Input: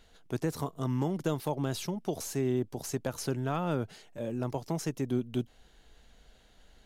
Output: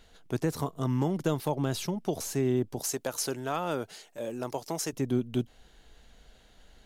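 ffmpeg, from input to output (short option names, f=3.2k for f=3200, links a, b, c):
-filter_complex "[0:a]asettb=1/sr,asplit=3[a][b][c];[a]atrim=end=2.804[d];[b]atrim=start=2.8:end=4.93,asetpts=PTS-STARTPTS,afade=t=in:d=0.004:c=qsin,afade=t=out:st=2.126:d=0.004:c=qsin,bass=f=250:g=-12,treble=f=4k:g=6[e];[c]atrim=start=4.926[f];[d][e]acrossfade=d=0.004:c1=hsin:c2=qsin[g];[g][f]acrossfade=d=0.004:c1=qsin:c2=hsin,volume=2.5dB"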